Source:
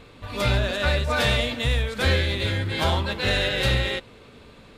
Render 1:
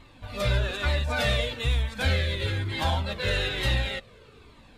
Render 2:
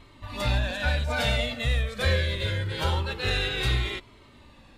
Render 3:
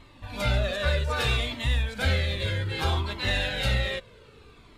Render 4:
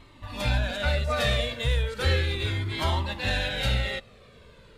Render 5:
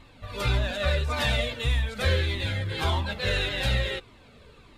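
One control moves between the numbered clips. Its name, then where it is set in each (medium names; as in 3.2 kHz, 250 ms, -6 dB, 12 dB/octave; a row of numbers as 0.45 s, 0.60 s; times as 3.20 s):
Shepard-style flanger, rate: 1.1 Hz, 0.24 Hz, 0.63 Hz, 0.35 Hz, 1.7 Hz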